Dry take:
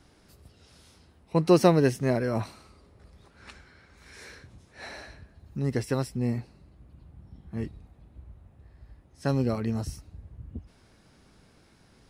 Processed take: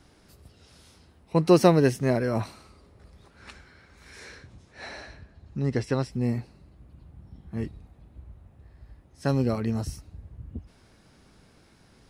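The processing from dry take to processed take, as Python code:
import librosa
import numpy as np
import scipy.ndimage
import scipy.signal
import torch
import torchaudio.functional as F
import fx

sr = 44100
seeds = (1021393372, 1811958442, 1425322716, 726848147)

y = fx.lowpass(x, sr, hz=fx.line((4.19, 9800.0), (6.11, 5900.0)), slope=12, at=(4.19, 6.11), fade=0.02)
y = y * librosa.db_to_amplitude(1.5)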